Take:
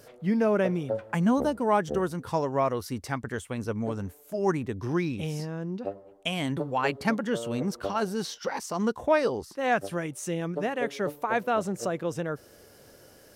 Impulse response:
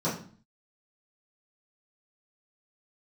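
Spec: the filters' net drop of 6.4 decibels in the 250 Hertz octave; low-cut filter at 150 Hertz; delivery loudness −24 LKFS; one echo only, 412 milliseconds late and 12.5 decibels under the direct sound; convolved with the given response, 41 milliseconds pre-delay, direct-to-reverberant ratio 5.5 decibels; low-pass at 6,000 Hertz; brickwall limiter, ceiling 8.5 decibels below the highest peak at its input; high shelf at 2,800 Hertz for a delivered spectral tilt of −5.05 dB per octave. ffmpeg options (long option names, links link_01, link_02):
-filter_complex "[0:a]highpass=150,lowpass=6000,equalizer=frequency=250:width_type=o:gain=-7.5,highshelf=frequency=2800:gain=6,alimiter=limit=-19dB:level=0:latency=1,aecho=1:1:412:0.237,asplit=2[link_01][link_02];[1:a]atrim=start_sample=2205,adelay=41[link_03];[link_02][link_03]afir=irnorm=-1:irlink=0,volume=-15.5dB[link_04];[link_01][link_04]amix=inputs=2:normalize=0,volume=5.5dB"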